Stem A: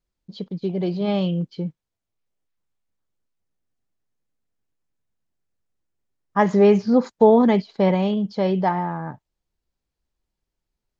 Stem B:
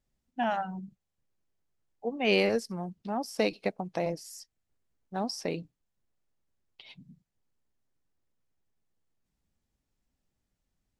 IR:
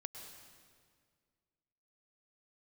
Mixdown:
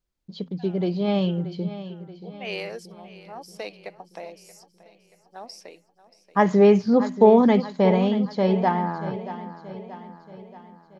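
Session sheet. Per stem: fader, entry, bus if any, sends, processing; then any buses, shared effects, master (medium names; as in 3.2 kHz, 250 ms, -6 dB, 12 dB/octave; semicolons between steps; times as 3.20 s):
-0.5 dB, 0.00 s, no send, echo send -13.5 dB, de-hum 84.17 Hz, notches 3
-5.0 dB, 0.20 s, no send, echo send -17 dB, high-pass 450 Hz 12 dB/octave; auto duck -19 dB, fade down 0.80 s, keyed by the first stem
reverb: none
echo: feedback delay 630 ms, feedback 52%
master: none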